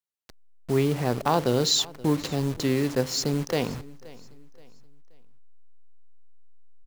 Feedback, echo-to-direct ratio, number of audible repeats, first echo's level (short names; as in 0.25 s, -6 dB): 37%, -20.5 dB, 2, -21.0 dB